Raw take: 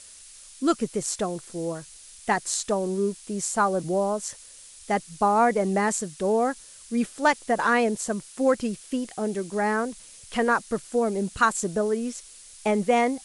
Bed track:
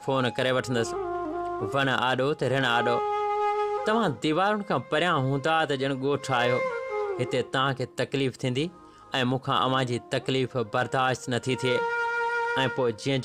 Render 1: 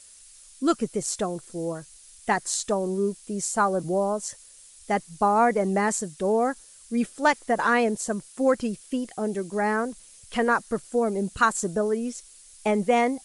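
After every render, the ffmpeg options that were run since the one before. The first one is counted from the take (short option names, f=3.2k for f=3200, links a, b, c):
-af "afftdn=nr=6:nf=-48"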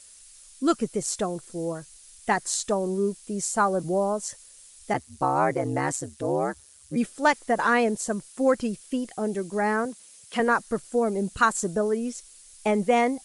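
-filter_complex "[0:a]asplit=3[a][b][c];[a]afade=t=out:st=4.93:d=0.02[d];[b]aeval=exprs='val(0)*sin(2*PI*70*n/s)':c=same,afade=t=in:st=4.93:d=0.02,afade=t=out:st=6.95:d=0.02[e];[c]afade=t=in:st=6.95:d=0.02[f];[d][e][f]amix=inputs=3:normalize=0,asettb=1/sr,asplit=3[g][h][i];[g]atrim=end=9.854[j];[h]atrim=start=9.85:end=10.4,asetpts=PTS-STARTPTS,afade=t=in:d=0.004:c=qsin,afade=t=out:st=0.546:d=0.004:c=qsin,highpass=160[k];[i]atrim=start=10.396[l];[j][k]acrossfade=d=0.004:c1=hsin:c2=qsin[m];[m][l]acrossfade=d=0.004:c1=qsin:c2=hsin"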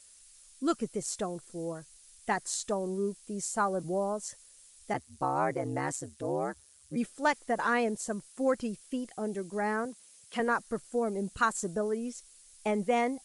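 -af "volume=-6.5dB"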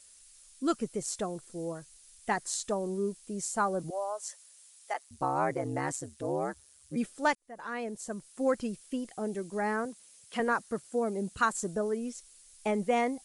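-filter_complex "[0:a]asettb=1/sr,asplit=3[a][b][c];[a]atrim=end=3.904[d];[b]atrim=start=3.9:end=5.11,asetpts=PTS-STARTPTS,afade=t=in:d=0.004:c=qsin,afade=t=out:st=1.206:d=0.004:c=qsin,highpass=f=580:w=0.5412,highpass=f=580:w=1.3066[e];[c]atrim=start=5.106[f];[d][e]acrossfade=d=0.004:c1=hsin:c2=qsin[g];[g][f]acrossfade=d=0.004:c1=qsin:c2=hsin,asettb=1/sr,asplit=3[h][i][j];[h]atrim=end=10.524[k];[i]atrim=start=10.52:end=11.53,asetpts=PTS-STARTPTS,afade=t=in:d=0.004:c=qsin,afade=t=out:st=1.006:d=0.004:c=qsin,highpass=51[l];[j]atrim=start=11.526[m];[k][l]acrossfade=d=0.004:c1=hsin:c2=qsin[n];[n][m]acrossfade=d=0.004:c1=qsin:c2=hsin,asplit=2[o][p];[o]atrim=end=7.35,asetpts=PTS-STARTPTS,afade=t=out:st=7.346:d=0.004:c=hsin[q];[p]atrim=start=7.35,asetpts=PTS-STARTPTS,afade=t=in:d=1.12[r];[q][r]concat=n=2:v=0:a=1"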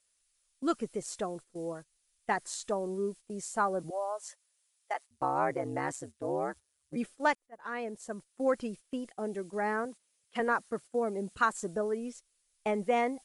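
-af "agate=range=-13dB:threshold=-43dB:ratio=16:detection=peak,bass=f=250:g=-5,treble=f=4k:g=-6"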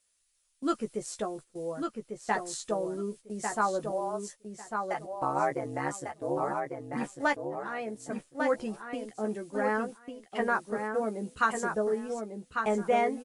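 -filter_complex "[0:a]asplit=2[a][b];[b]adelay=14,volume=-6dB[c];[a][c]amix=inputs=2:normalize=0,asplit=2[d][e];[e]adelay=1148,lowpass=f=4.9k:p=1,volume=-5dB,asplit=2[f][g];[g]adelay=1148,lowpass=f=4.9k:p=1,volume=0.19,asplit=2[h][i];[i]adelay=1148,lowpass=f=4.9k:p=1,volume=0.19[j];[d][f][h][j]amix=inputs=4:normalize=0"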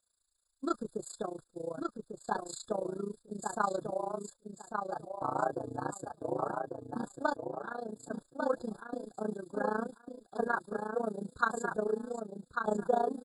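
-af "tremolo=f=28:d=0.889,afftfilt=real='re*eq(mod(floor(b*sr/1024/1700),2),0)':imag='im*eq(mod(floor(b*sr/1024/1700),2),0)':win_size=1024:overlap=0.75"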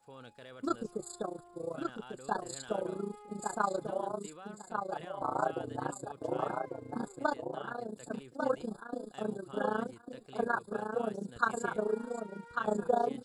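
-filter_complex "[1:a]volume=-26dB[a];[0:a][a]amix=inputs=2:normalize=0"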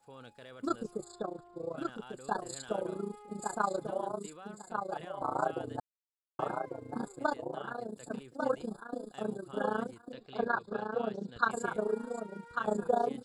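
-filter_complex "[0:a]asettb=1/sr,asplit=3[a][b][c];[a]atrim=end=1.044[d];[b]atrim=start=1.04:end=1.77,asetpts=PTS-STARTPTS,afade=t=in:d=0.004:c=qsin,afade=t=out:st=0.726:d=0.004:c=qsin,lowpass=4.9k[e];[c]atrim=start=1.766[f];[d][e]acrossfade=d=0.004:c1=hsin:c2=qsin[g];[g][f]acrossfade=d=0.004:c1=qsin:c2=hsin,asettb=1/sr,asplit=3[h][i][j];[h]atrim=end=10.124[k];[i]atrim=start=10.12:end=11.51,asetpts=PTS-STARTPTS,afade=t=in:d=0.004:c=qsin,afade=t=out:st=1.386:d=0.004:c=qsin,lowpass=f=4k:t=q:w=1.6[l];[j]atrim=start=11.506[m];[k][l]acrossfade=d=0.004:c1=hsin:c2=qsin[n];[n][m]acrossfade=d=0.004:c1=qsin:c2=hsin,asplit=3[o][p][q];[o]atrim=end=5.8,asetpts=PTS-STARTPTS,afade=t=out:st=5.796:d=0.004:c=hsin[r];[p]atrim=start=5.8:end=6.39,asetpts=PTS-STARTPTS,volume=0[s];[q]atrim=start=6.39,asetpts=PTS-STARTPTS,afade=t=in:d=0.004:c=hsin[t];[r][s][t]concat=n=3:v=0:a=1"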